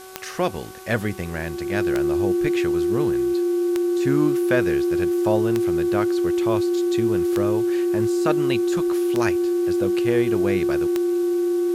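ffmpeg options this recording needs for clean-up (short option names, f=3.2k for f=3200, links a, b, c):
-af "adeclick=t=4,bandreject=f=376.1:t=h:w=4,bandreject=f=752.2:t=h:w=4,bandreject=f=1.1283k:t=h:w=4,bandreject=f=1.5044k:t=h:w=4,bandreject=f=350:w=30,afwtdn=0.0056"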